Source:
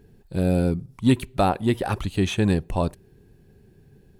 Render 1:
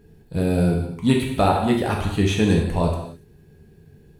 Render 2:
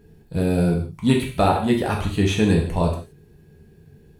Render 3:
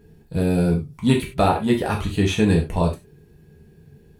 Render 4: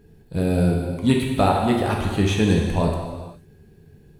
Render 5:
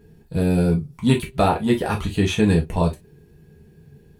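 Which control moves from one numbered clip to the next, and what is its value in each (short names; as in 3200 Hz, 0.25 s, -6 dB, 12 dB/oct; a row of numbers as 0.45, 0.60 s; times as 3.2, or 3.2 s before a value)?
non-linear reverb, gate: 310, 200, 120, 530, 80 ms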